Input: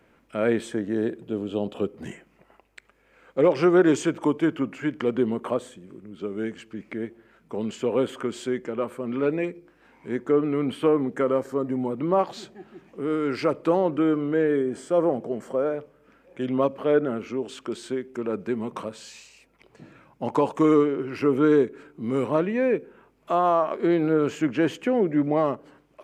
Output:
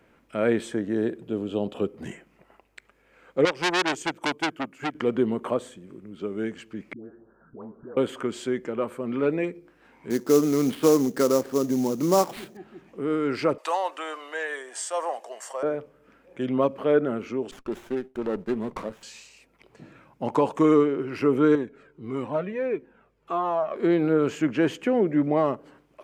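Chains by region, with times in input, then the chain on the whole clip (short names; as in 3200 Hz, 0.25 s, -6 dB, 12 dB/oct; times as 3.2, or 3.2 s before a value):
3.45–4.95 high shelf 6400 Hz +12 dB + transient shaper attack +4 dB, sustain -12 dB + core saturation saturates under 3200 Hz
6.93–7.97 steep low-pass 1600 Hz 96 dB/oct + compressor 4:1, threshold -39 dBFS + dispersion highs, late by 0.125 s, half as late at 660 Hz
10.1–12.57 HPF 170 Hz + low shelf 240 Hz +8 dB + sample-rate reducer 6400 Hz, jitter 20%
13.58–15.63 HPF 590 Hz 24 dB/oct + bell 7400 Hz +13.5 dB 2.3 oct + comb 1.1 ms, depth 39%
17.51–19.03 expander -39 dBFS + running maximum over 9 samples
21.55–23.76 high shelf 7500 Hz -10.5 dB + cascading flanger falling 1.6 Hz
whole clip: dry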